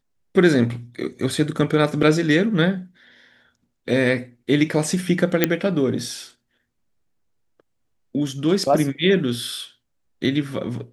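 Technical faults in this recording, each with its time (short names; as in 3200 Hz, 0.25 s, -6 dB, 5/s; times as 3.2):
2.03 gap 3 ms
5.44 pop -1 dBFS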